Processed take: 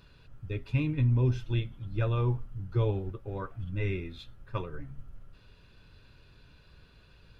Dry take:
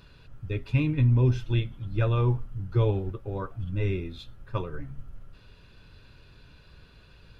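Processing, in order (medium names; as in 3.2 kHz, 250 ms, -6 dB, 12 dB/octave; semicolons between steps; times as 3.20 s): 3.17–4.66 s: dynamic bell 2 kHz, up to +6 dB, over -56 dBFS, Q 1.5; trim -4 dB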